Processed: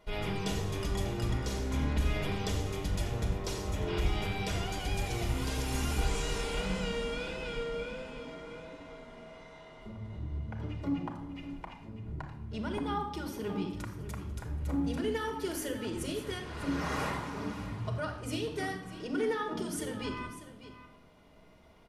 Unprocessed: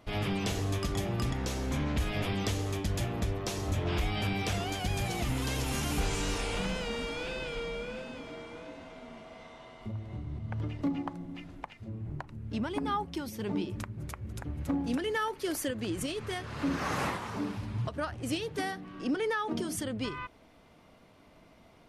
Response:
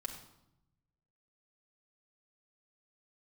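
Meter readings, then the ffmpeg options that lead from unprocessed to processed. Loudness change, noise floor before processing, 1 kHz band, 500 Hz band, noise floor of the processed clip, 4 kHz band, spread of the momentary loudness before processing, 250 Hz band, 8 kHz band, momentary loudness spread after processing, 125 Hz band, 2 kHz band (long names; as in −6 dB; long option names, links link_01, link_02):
−1.5 dB, −59 dBFS, −2.0 dB, −0.5 dB, −55 dBFS, −2.0 dB, 12 LU, −2.0 dB, −2.5 dB, 13 LU, −1.0 dB, −2.5 dB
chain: -filter_complex "[0:a]aecho=1:1:596:0.211[link_01];[1:a]atrim=start_sample=2205,asetrate=48510,aresample=44100[link_02];[link_01][link_02]afir=irnorm=-1:irlink=0"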